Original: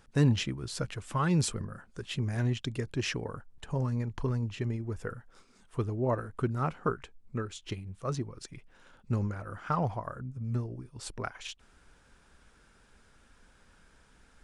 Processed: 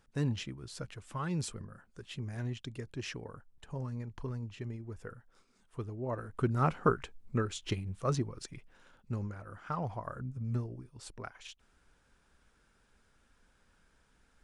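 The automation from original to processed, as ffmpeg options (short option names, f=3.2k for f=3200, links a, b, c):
-af "volume=9.5dB,afade=t=in:st=6.09:d=0.62:silence=0.281838,afade=t=out:st=7.92:d=1.2:silence=0.334965,afade=t=in:st=9.85:d=0.4:silence=0.473151,afade=t=out:st=10.25:d=0.84:silence=0.421697"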